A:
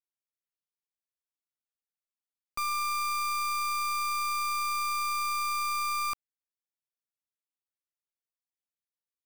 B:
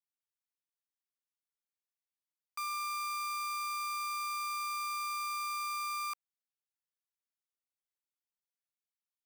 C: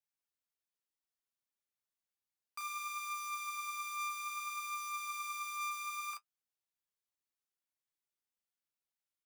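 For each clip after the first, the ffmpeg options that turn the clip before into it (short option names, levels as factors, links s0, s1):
-af "highpass=f=830:w=0.5412,highpass=f=830:w=1.3066,volume=0.501"
-filter_complex "[0:a]asplit=2[s0][s1];[s1]adelay=35,volume=0.708[s2];[s0][s2]amix=inputs=2:normalize=0,flanger=delay=8.2:depth=4.4:regen=45:speed=0.62:shape=sinusoidal,volume=1.12"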